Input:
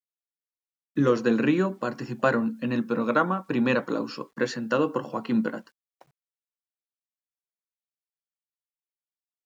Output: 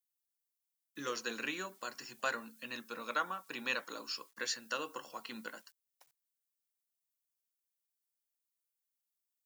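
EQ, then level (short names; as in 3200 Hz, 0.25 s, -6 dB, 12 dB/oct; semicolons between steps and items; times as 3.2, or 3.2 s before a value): differentiator; +4.5 dB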